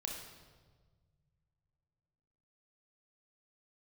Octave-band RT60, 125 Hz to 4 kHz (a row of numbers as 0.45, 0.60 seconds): 3.4, 2.2, 1.6, 1.4, 1.1, 1.1 seconds